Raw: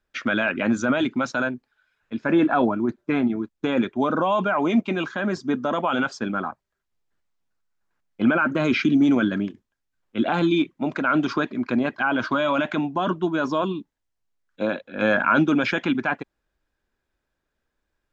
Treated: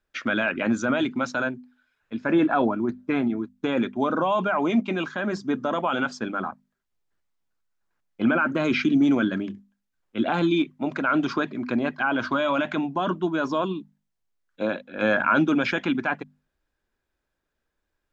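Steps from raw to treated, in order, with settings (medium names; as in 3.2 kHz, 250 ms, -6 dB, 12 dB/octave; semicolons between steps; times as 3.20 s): hum notches 50/100/150/200/250 Hz; trim -1.5 dB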